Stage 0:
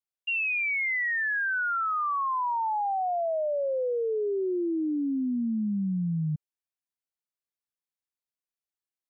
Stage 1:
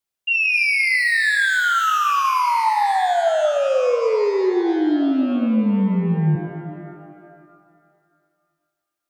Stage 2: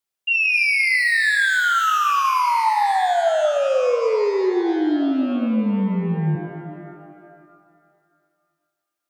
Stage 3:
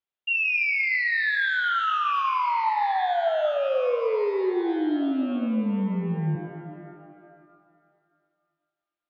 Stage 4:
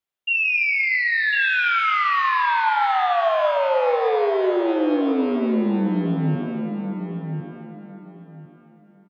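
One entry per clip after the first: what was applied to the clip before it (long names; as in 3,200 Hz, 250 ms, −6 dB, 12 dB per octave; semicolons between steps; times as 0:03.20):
reverb with rising layers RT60 2.1 s, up +12 semitones, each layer −8 dB, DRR 6 dB; level +8.5 dB
low-shelf EQ 160 Hz −6 dB
Chebyshev low-pass filter 3,500 Hz, order 3; level −5 dB
repeating echo 1,052 ms, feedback 22%, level −6 dB; level +3.5 dB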